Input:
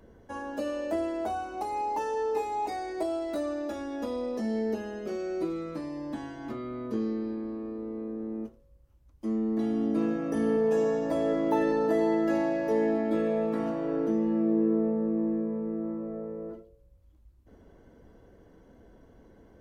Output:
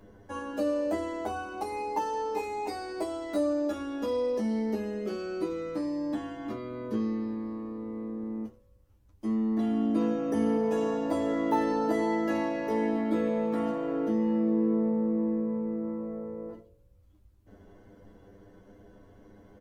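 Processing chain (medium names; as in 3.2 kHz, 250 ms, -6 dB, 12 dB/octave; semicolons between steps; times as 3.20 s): early reflections 10 ms -3.5 dB, 20 ms -10 dB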